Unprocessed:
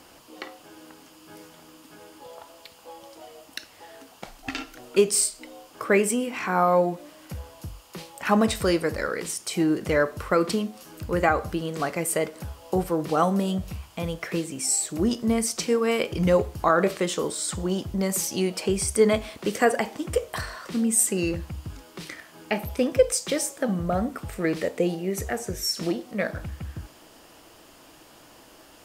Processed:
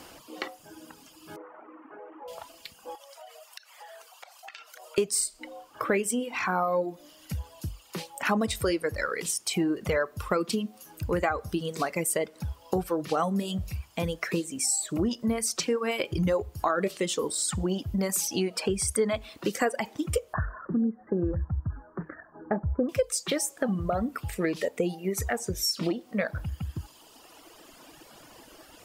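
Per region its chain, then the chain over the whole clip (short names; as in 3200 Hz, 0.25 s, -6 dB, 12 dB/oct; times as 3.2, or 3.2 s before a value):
1.36–2.28 CVSD 16 kbps + Chebyshev band-pass 350–1300 Hz + fast leveller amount 50%
2.95–4.98 steep high-pass 550 Hz + compressor, threshold -44 dBFS
20.33–22.89 Chebyshev low-pass 1700 Hz, order 6 + low shelf 140 Hz +10.5 dB
whole clip: reverb removal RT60 1.9 s; compressor 3:1, threshold -29 dBFS; gain +3.5 dB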